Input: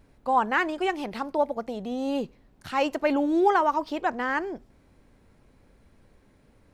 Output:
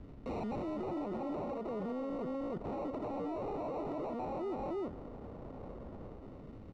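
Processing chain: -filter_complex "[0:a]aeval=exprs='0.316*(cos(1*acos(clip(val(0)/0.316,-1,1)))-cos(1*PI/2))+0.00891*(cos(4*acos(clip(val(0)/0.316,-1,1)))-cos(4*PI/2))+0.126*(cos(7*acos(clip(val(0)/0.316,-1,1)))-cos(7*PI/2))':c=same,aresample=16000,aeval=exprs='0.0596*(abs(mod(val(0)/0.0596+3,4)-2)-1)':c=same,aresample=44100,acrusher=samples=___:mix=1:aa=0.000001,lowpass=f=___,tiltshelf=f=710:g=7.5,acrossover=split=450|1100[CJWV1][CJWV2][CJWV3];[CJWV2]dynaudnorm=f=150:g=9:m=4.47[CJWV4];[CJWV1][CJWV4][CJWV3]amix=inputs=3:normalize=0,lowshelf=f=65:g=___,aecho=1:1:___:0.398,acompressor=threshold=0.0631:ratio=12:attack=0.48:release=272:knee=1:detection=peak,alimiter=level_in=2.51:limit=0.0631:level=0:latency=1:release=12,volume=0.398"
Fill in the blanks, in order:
27, 4.1k, -8.5, 311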